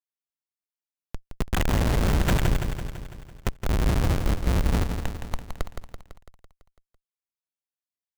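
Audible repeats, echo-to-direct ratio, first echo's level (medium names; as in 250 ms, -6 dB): 7, -5.0 dB, -7.0 dB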